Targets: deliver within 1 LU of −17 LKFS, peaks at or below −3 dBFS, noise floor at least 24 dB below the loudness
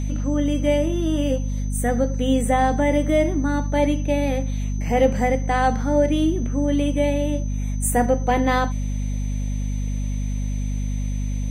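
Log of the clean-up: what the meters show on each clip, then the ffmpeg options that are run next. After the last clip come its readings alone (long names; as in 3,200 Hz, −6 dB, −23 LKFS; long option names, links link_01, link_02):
mains hum 50 Hz; hum harmonics up to 250 Hz; level of the hum −22 dBFS; interfering tone 6,100 Hz; level of the tone −44 dBFS; integrated loudness −22.0 LKFS; sample peak −5.0 dBFS; target loudness −17.0 LKFS
→ -af "bandreject=frequency=50:width_type=h:width=6,bandreject=frequency=100:width_type=h:width=6,bandreject=frequency=150:width_type=h:width=6,bandreject=frequency=200:width_type=h:width=6,bandreject=frequency=250:width_type=h:width=6"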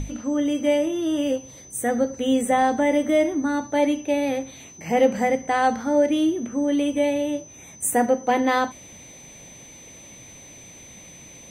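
mains hum none found; interfering tone 6,100 Hz; level of the tone −44 dBFS
→ -af "bandreject=frequency=6100:width=30"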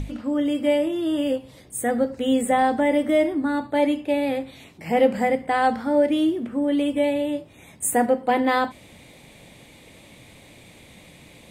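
interfering tone none found; integrated loudness −22.5 LKFS; sample peak −6.5 dBFS; target loudness −17.0 LKFS
→ -af "volume=5.5dB,alimiter=limit=-3dB:level=0:latency=1"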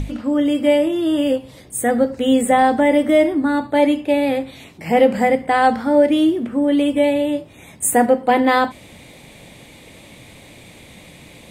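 integrated loudness −17.0 LKFS; sample peak −3.0 dBFS; background noise floor −44 dBFS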